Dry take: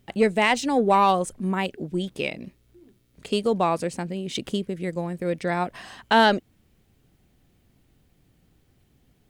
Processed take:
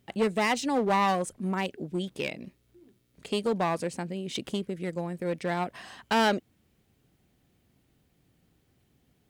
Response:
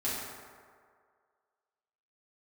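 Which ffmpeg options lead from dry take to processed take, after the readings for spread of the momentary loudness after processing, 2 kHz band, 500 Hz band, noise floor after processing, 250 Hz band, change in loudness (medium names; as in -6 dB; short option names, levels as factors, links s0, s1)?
10 LU, -6.0 dB, -5.5 dB, -70 dBFS, -4.5 dB, -5.5 dB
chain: -af "aeval=exprs='clip(val(0),-1,0.0841)':c=same,highpass=f=83:p=1,volume=0.668"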